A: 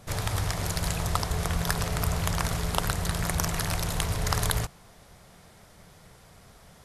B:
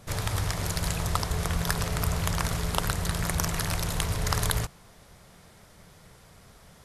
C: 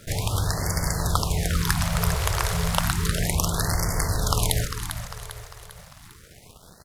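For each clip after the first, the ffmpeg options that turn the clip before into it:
-af "equalizer=f=730:w=3.7:g=-2.5"
-filter_complex "[0:a]acrusher=bits=7:mix=0:aa=0.5,asplit=2[s0][s1];[s1]aecho=0:1:399|798|1197|1596|1995:0.355|0.17|0.0817|0.0392|0.0188[s2];[s0][s2]amix=inputs=2:normalize=0,afftfilt=real='re*(1-between(b*sr/1024,220*pow(3200/220,0.5+0.5*sin(2*PI*0.32*pts/sr))/1.41,220*pow(3200/220,0.5+0.5*sin(2*PI*0.32*pts/sr))*1.41))':imag='im*(1-between(b*sr/1024,220*pow(3200/220,0.5+0.5*sin(2*PI*0.32*pts/sr))/1.41,220*pow(3200/220,0.5+0.5*sin(2*PI*0.32*pts/sr))*1.41))':win_size=1024:overlap=0.75,volume=1.58"

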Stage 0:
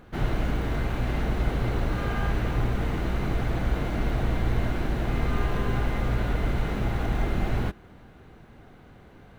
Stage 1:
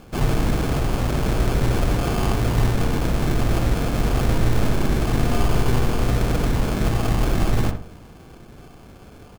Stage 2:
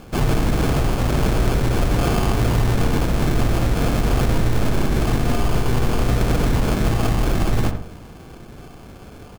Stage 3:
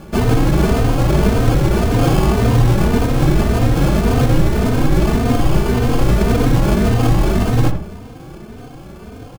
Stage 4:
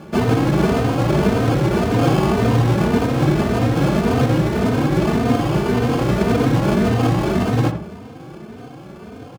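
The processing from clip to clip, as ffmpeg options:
-filter_complex "[0:a]acrusher=samples=23:mix=1:aa=0.000001,asplit=2[s0][s1];[s1]adelay=61,lowpass=f=1600:p=1,volume=0.531,asplit=2[s2][s3];[s3]adelay=61,lowpass=f=1600:p=1,volume=0.41,asplit=2[s4][s5];[s5]adelay=61,lowpass=f=1600:p=1,volume=0.41,asplit=2[s6][s7];[s7]adelay=61,lowpass=f=1600:p=1,volume=0.41,asplit=2[s8][s9];[s9]adelay=61,lowpass=f=1600:p=1,volume=0.41[s10];[s0][s2][s4][s6][s8][s10]amix=inputs=6:normalize=0,volume=1.88"
-af "alimiter=limit=0.211:level=0:latency=1:release=87,volume=1.58"
-filter_complex "[0:a]equalizer=f=240:w=0.32:g=4.5,asplit=2[s0][s1];[s1]adelay=3.1,afreqshift=1.8[s2];[s0][s2]amix=inputs=2:normalize=1,volume=1.78"
-af "highpass=120,highshelf=f=6800:g=-9.5"

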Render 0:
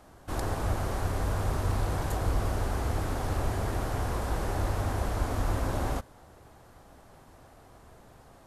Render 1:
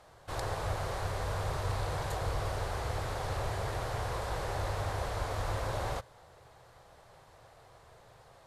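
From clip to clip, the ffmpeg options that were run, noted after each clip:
-af "equalizer=f=125:t=o:w=1:g=8,equalizer=f=250:t=o:w=1:g=-10,equalizer=f=500:t=o:w=1:g=9,equalizer=f=1000:t=o:w=1:g=5,equalizer=f=2000:t=o:w=1:g=6,equalizer=f=4000:t=o:w=1:g=9,equalizer=f=8000:t=o:w=1:g=4,volume=0.355"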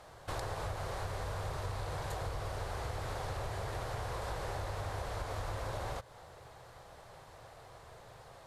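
-af "acompressor=threshold=0.0112:ratio=6,volume=1.5"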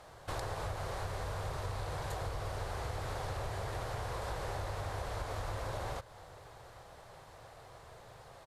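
-af "aecho=1:1:821:0.0794"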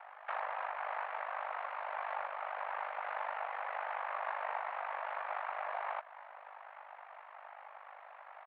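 -af "highpass=f=560:t=q:w=0.5412,highpass=f=560:t=q:w=1.307,lowpass=f=2500:t=q:w=0.5176,lowpass=f=2500:t=q:w=0.7071,lowpass=f=2500:t=q:w=1.932,afreqshift=110,aeval=exprs='val(0)*sin(2*PI*25*n/s)':c=same,volume=2.24"

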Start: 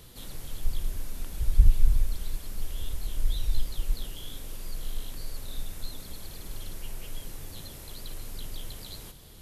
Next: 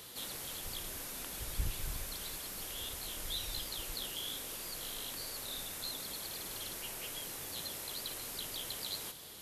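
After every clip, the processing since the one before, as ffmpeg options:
-af "highpass=f=590:p=1,volume=1.68"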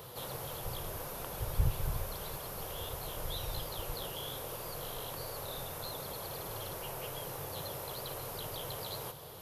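-af "equalizer=f=125:t=o:w=1:g=11,equalizer=f=250:t=o:w=1:g=-9,equalizer=f=500:t=o:w=1:g=7,equalizer=f=1000:t=o:w=1:g=5,equalizer=f=2000:t=o:w=1:g=-6,equalizer=f=4000:t=o:w=1:g=-5,equalizer=f=8000:t=o:w=1:g=-11,volume=1.58"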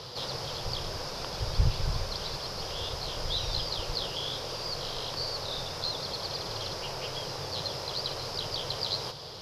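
-af "lowpass=f=5000:t=q:w=6.7,volume=1.68"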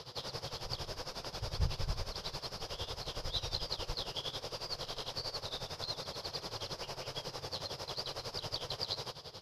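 -af "tremolo=f=11:d=0.83,volume=0.708"

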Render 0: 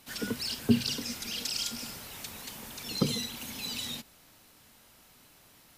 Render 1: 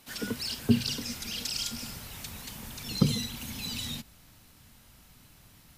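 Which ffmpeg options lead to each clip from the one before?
-af "asubboost=boost=4:cutoff=200"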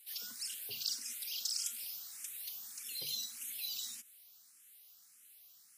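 -filter_complex "[0:a]aderivative,bandreject=f=960:w=9.2,asplit=2[s0][s1];[s1]afreqshift=1.7[s2];[s0][s2]amix=inputs=2:normalize=1,volume=1.12"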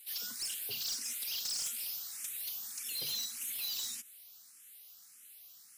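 -af "asoftclip=type=hard:threshold=0.0119,volume=1.78"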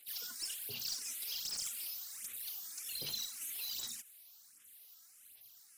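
-af "aphaser=in_gain=1:out_gain=1:delay=3.1:decay=0.61:speed=1.3:type=sinusoidal,volume=0.531"

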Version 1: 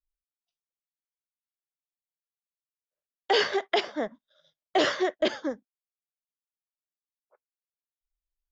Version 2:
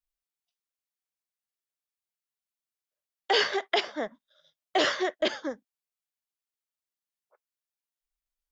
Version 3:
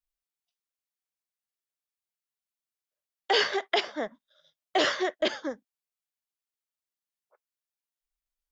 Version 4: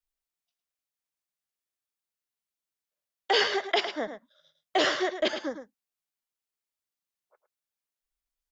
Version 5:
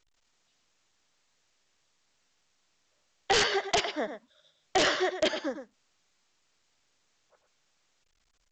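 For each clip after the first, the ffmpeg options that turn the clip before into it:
-af "tiltshelf=f=650:g=-3,volume=0.841"
-af anull
-af "aecho=1:1:107:0.316"
-af "aeval=exprs='(mod(5.96*val(0)+1,2)-1)/5.96':c=same" -ar 16000 -c:a pcm_alaw

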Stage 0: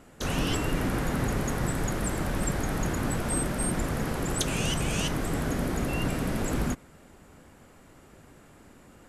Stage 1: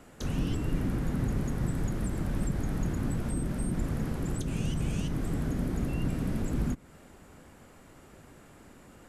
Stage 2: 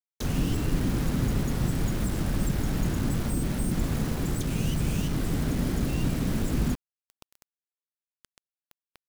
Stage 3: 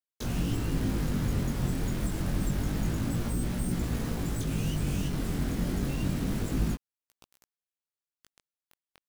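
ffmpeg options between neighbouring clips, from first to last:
-filter_complex "[0:a]acrossover=split=320[s0][s1];[s1]acompressor=threshold=0.00794:ratio=10[s2];[s0][s2]amix=inputs=2:normalize=0"
-af "acrusher=bits=6:mix=0:aa=0.000001,volume=1.5"
-af "flanger=delay=16.5:depth=6:speed=0.27"

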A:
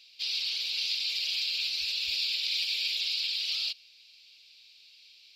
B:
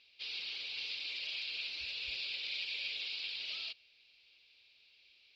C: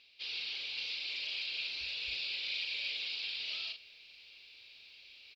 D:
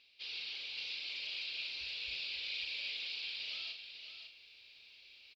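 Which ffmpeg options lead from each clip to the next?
-af "lowpass=2200"
-filter_complex "[0:a]asplit=2[s0][s1];[s1]adelay=37,volume=0.501[s2];[s0][s2]amix=inputs=2:normalize=0,areverse,acompressor=mode=upward:threshold=0.00398:ratio=2.5,areverse,volume=1.12"
-af "aecho=1:1:549:0.376,volume=0.668"

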